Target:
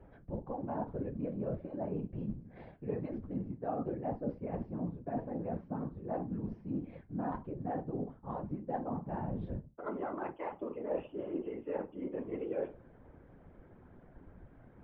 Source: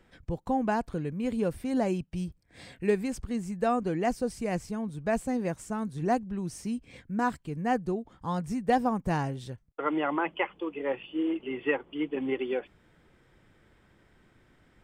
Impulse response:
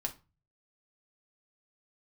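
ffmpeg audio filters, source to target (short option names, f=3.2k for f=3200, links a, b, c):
-filter_complex "[1:a]atrim=start_sample=2205[a];[0:a][a]afir=irnorm=-1:irlink=0,areverse,acompressor=threshold=-38dB:ratio=10,areverse,lowpass=f=3k:p=1,bandreject=f=1.9k:w=22,aresample=16000,adynamicsmooth=sensitivity=1:basefreq=1.5k,aresample=44100,afftfilt=real='hypot(re,im)*cos(2*PI*random(0))':imag='hypot(re,im)*sin(2*PI*random(1))':win_size=512:overlap=0.75,equalizer=f=580:w=1.6:g=4.5,volume=8.5dB"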